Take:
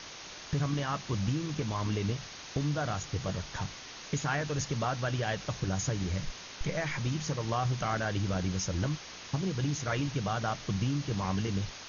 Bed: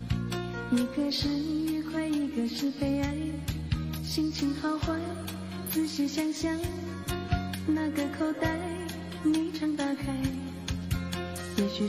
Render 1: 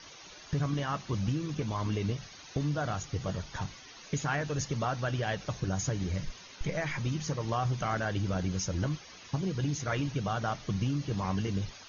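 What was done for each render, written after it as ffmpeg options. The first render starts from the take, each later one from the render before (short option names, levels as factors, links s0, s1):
-af "afftdn=nr=11:nf=-46"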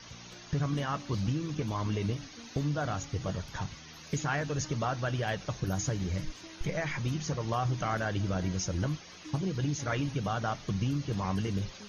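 -filter_complex "[1:a]volume=0.0891[s0];[0:a][s0]amix=inputs=2:normalize=0"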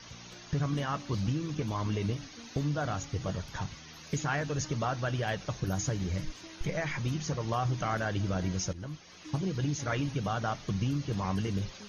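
-filter_complex "[0:a]asplit=2[s0][s1];[s0]atrim=end=8.73,asetpts=PTS-STARTPTS,afade=t=out:st=8.726:d=0.004:c=hsin:silence=0.188365[s2];[s1]atrim=start=8.73,asetpts=PTS-STARTPTS,afade=t=in:d=0.63:silence=0.188365[s3];[s2][s3]concat=n=2:v=0:a=1"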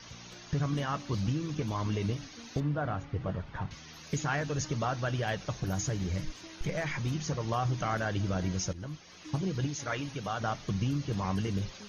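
-filter_complex "[0:a]asettb=1/sr,asplit=3[s0][s1][s2];[s0]atrim=end=2.604[s3];[s1]atrim=start=2.6:end=3.71,asetpts=PTS-STARTPTS,afade=t=in:d=0.004:c=qsin,afade=t=out:st=1.106:d=0.004:c=qsin,lowpass=2100[s4];[s2]atrim=start=3.706[s5];[s3][s4]acrossfade=d=0.004:c1=hsin:c2=qsin[s6];[s6][s5]acrossfade=d=0.004:c1=qsin:c2=hsin,asettb=1/sr,asplit=3[s7][s8][s9];[s7]atrim=end=5.564[s10];[s8]atrim=start=5.56:end=7.14,asetpts=PTS-STARTPTS,afade=t=in:d=0.004:c=qsin,afade=t=out:st=1.576:d=0.004:c=qsin,asoftclip=type=hard:threshold=0.0531[s11];[s9]atrim=start=7.136[s12];[s10][s11]acrossfade=d=0.004:c1=hsin:c2=qsin[s13];[s13][s12]acrossfade=d=0.004:c1=qsin:c2=hsin,asettb=1/sr,asplit=3[s14][s15][s16];[s14]atrim=end=9.674[s17];[s15]atrim=start=9.67:end=10.4,asetpts=PTS-STARTPTS,afade=t=in:d=0.004:c=qsin,afade=t=out:st=0.726:d=0.004:c=qsin,lowshelf=f=320:g=-8[s18];[s16]atrim=start=10.396[s19];[s17][s18]acrossfade=d=0.004:c1=hsin:c2=qsin[s20];[s20][s19]acrossfade=d=0.004:c1=qsin:c2=hsin"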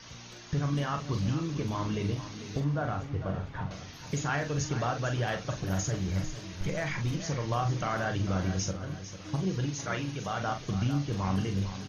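-filter_complex "[0:a]asplit=2[s0][s1];[s1]adelay=42,volume=0.447[s2];[s0][s2]amix=inputs=2:normalize=0,aecho=1:1:449|898|1347|1796:0.251|0.1|0.0402|0.0161"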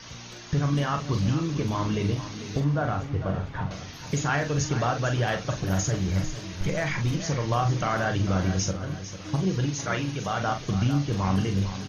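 -af "volume=1.78"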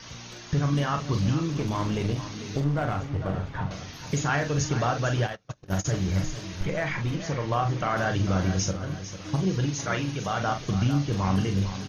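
-filter_complex "[0:a]asettb=1/sr,asplit=3[s0][s1][s2];[s0]atrim=end=1.504[s3];[s1]atrim=start=1.5:end=3.57,asetpts=PTS-STARTPTS,afade=t=in:d=0.004:c=qsin,afade=t=out:st=2.066:d=0.004:c=qsin,aeval=exprs='clip(val(0),-1,0.0501)':c=same[s4];[s2]atrim=start=3.566[s5];[s3][s4]acrossfade=d=0.004:c1=hsin:c2=qsin[s6];[s6][s5]acrossfade=d=0.004:c1=qsin:c2=hsin,asplit=3[s7][s8][s9];[s7]afade=t=out:st=5.26:d=0.02[s10];[s8]agate=range=0.0224:threshold=0.0562:ratio=16:release=100:detection=peak,afade=t=in:st=5.26:d=0.02,afade=t=out:st=5.84:d=0.02[s11];[s9]afade=t=in:st=5.84:d=0.02[s12];[s10][s11][s12]amix=inputs=3:normalize=0,asettb=1/sr,asplit=3[s13][s14][s15];[s13]atrim=end=6.634[s16];[s14]atrim=start=6.63:end=7.97,asetpts=PTS-STARTPTS,afade=t=in:d=0.004:c=qsin,afade=t=out:st=1.336:d=0.004:c=qsin,bass=f=250:g=-3,treble=f=4000:g=-8[s17];[s15]atrim=start=7.966[s18];[s16][s17]acrossfade=d=0.004:c1=hsin:c2=qsin[s19];[s19][s18]acrossfade=d=0.004:c1=qsin:c2=hsin"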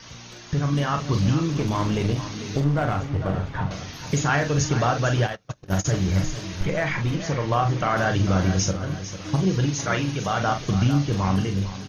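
-af "dynaudnorm=f=230:g=7:m=1.58"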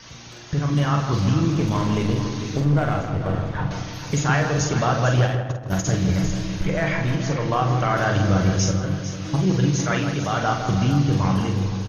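-filter_complex "[0:a]asplit=2[s0][s1];[s1]adelay=48,volume=0.376[s2];[s0][s2]amix=inputs=2:normalize=0,asplit=2[s3][s4];[s4]adelay=160,lowpass=f=1500:p=1,volume=0.501,asplit=2[s5][s6];[s6]adelay=160,lowpass=f=1500:p=1,volume=0.52,asplit=2[s7][s8];[s8]adelay=160,lowpass=f=1500:p=1,volume=0.52,asplit=2[s9][s10];[s10]adelay=160,lowpass=f=1500:p=1,volume=0.52,asplit=2[s11][s12];[s12]adelay=160,lowpass=f=1500:p=1,volume=0.52,asplit=2[s13][s14];[s14]adelay=160,lowpass=f=1500:p=1,volume=0.52[s15];[s3][s5][s7][s9][s11][s13][s15]amix=inputs=7:normalize=0"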